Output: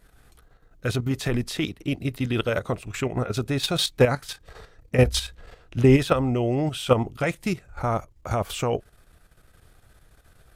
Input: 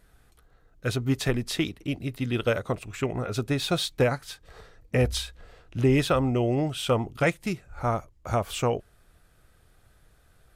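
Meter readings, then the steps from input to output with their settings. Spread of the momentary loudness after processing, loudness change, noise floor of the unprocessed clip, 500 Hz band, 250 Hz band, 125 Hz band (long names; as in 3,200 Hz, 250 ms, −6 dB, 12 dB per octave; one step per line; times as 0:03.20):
10 LU, +2.5 dB, −61 dBFS, +3.0 dB, +2.5 dB, +3.0 dB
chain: output level in coarse steps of 10 dB
level +7 dB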